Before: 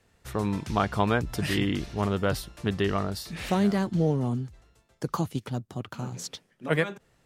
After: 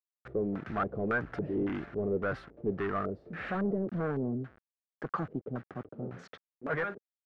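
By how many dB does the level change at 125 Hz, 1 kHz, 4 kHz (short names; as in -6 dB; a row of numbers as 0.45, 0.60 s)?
-10.0, -6.0, -20.5 dB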